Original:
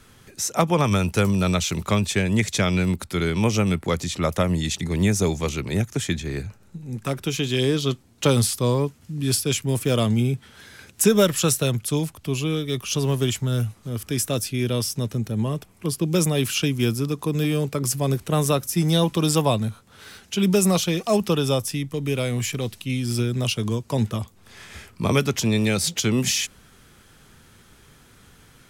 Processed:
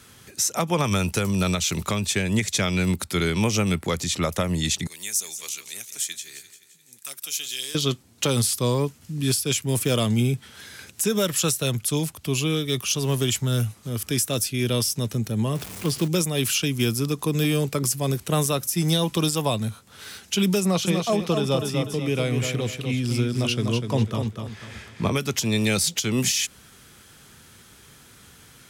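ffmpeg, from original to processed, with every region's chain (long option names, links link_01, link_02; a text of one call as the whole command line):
ffmpeg -i in.wav -filter_complex "[0:a]asettb=1/sr,asplit=3[link_01][link_02][link_03];[link_01]atrim=end=4.874[link_04];[link_02]atrim=start=4.87:end=7.75,asetpts=PTS-STARTPTS,afade=type=in:duration=0.004:curve=qsin,afade=type=out:start_time=2.876:duration=0.004:curve=qsin,aderivative,aecho=1:1:173|346|519|692|865:0.211|0.112|0.0594|0.0315|0.0167,atrim=end_sample=127008[link_05];[link_03]atrim=start=7.746[link_06];[link_04][link_05]acrossfade=duration=0.004:curve1=hsin:curve2=qsin[link_07];[link_07][link_06]acrossfade=duration=0.004:curve1=qsin:curve2=hsin,asettb=1/sr,asplit=3[link_08][link_09][link_10];[link_08]atrim=end=15.554[link_11];[link_09]atrim=start=15.55:end=16.08,asetpts=PTS-STARTPTS,afade=type=in:duration=0.004:curve=qsin,afade=type=out:start_time=0.526:duration=0.004:curve=qsin,aeval=exprs='val(0)+0.5*0.02*sgn(val(0))':channel_layout=same,acrossover=split=5900[link_12][link_13];[link_13]acompressor=threshold=-39dB:ratio=4:attack=1:release=60[link_14];[link_12][link_14]amix=inputs=2:normalize=0,acrusher=bits=7:mode=log:mix=0:aa=0.000001[link_15];[link_10]atrim=start=16.076[link_16];[link_11][link_15]acrossfade=duration=0.004:curve1=hsin:curve2=qsin[link_17];[link_17][link_16]acrossfade=duration=0.004:curve1=qsin:curve2=hsin,asettb=1/sr,asplit=3[link_18][link_19][link_20];[link_18]atrim=end=20.604[link_21];[link_19]atrim=start=20.6:end=25.16,asetpts=PTS-STARTPTS,afade=type=in:duration=0.004:curve=qsin,afade=type=out:start_time=4.556:duration=0.004:curve=qsin,lowpass=frequency=2500:poles=1,aecho=1:1:247|494|741|988:0.501|0.16|0.0513|0.0164,atrim=end_sample=201096[link_22];[link_20]atrim=start=25.156[link_23];[link_21][link_22]acrossfade=duration=0.004:curve1=hsin:curve2=qsin[link_24];[link_24][link_23]acrossfade=duration=0.004:curve1=qsin:curve2=hsin,highpass=54,highshelf=frequency=2600:gain=6.5,alimiter=limit=-12dB:level=0:latency=1:release=251" out.wav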